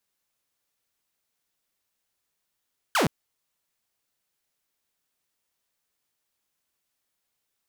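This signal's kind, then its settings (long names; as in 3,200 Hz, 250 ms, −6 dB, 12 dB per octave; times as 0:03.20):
single falling chirp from 1,700 Hz, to 120 Hz, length 0.12 s saw, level −17 dB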